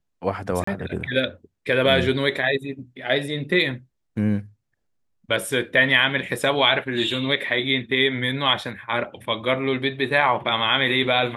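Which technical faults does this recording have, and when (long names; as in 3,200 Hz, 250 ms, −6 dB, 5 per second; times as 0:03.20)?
0:00.64–0:00.67: drop-out 34 ms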